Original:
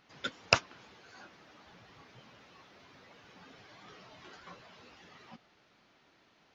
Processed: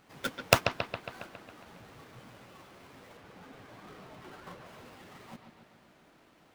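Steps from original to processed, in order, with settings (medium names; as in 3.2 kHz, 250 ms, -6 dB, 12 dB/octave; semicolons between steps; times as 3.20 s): square wave that keeps the level; treble shelf 3.8 kHz -5 dB, from 3.17 s -11 dB, from 4.66 s -5.5 dB; bucket-brigade echo 137 ms, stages 4096, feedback 61%, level -8 dB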